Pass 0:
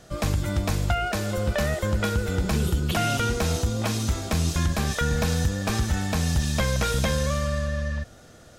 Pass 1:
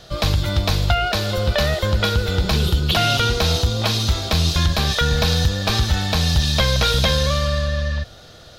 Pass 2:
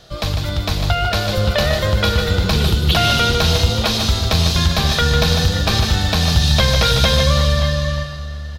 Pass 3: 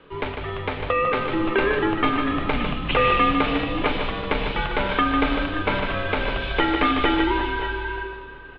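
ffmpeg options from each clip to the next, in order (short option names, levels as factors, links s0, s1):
-af "equalizer=f=250:t=o:w=1:g=-7,equalizer=f=2000:t=o:w=1:g=-3,equalizer=f=4000:t=o:w=1:g=12,equalizer=f=8000:t=o:w=1:g=-10,volume=2.11"
-filter_complex "[0:a]dynaudnorm=f=290:g=7:m=3.76,asplit=2[s0][s1];[s1]aecho=0:1:150|550|578|579:0.473|0.15|0.224|0.133[s2];[s0][s2]amix=inputs=2:normalize=0,volume=0.794"
-af "bandreject=f=45.08:t=h:w=4,bandreject=f=90.16:t=h:w=4,bandreject=f=135.24:t=h:w=4,bandreject=f=180.32:t=h:w=4,bandreject=f=225.4:t=h:w=4,bandreject=f=270.48:t=h:w=4,bandreject=f=315.56:t=h:w=4,bandreject=f=360.64:t=h:w=4,bandreject=f=405.72:t=h:w=4,bandreject=f=450.8:t=h:w=4,bandreject=f=495.88:t=h:w=4,bandreject=f=540.96:t=h:w=4,bandreject=f=586.04:t=h:w=4,bandreject=f=631.12:t=h:w=4,bandreject=f=676.2:t=h:w=4,bandreject=f=721.28:t=h:w=4,bandreject=f=766.36:t=h:w=4,bandreject=f=811.44:t=h:w=4,bandreject=f=856.52:t=h:w=4,bandreject=f=901.6:t=h:w=4,highpass=f=190:t=q:w=0.5412,highpass=f=190:t=q:w=1.307,lowpass=f=2800:t=q:w=0.5176,lowpass=f=2800:t=q:w=0.7071,lowpass=f=2800:t=q:w=1.932,afreqshift=-200"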